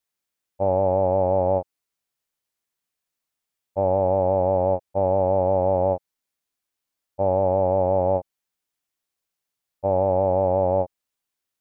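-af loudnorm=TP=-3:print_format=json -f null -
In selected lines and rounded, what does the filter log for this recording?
"input_i" : "-22.0",
"input_tp" : "-10.4",
"input_lra" : "2.5",
"input_thresh" : "-32.3",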